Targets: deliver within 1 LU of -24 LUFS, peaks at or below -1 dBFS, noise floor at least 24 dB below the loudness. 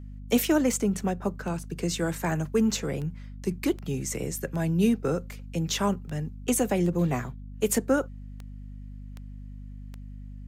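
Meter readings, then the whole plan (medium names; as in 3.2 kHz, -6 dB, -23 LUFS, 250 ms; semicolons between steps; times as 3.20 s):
clicks found 13; hum 50 Hz; highest harmonic 250 Hz; hum level -38 dBFS; loudness -28.0 LUFS; peak level -11.5 dBFS; loudness target -24.0 LUFS
-> de-click; hum notches 50/100/150/200/250 Hz; trim +4 dB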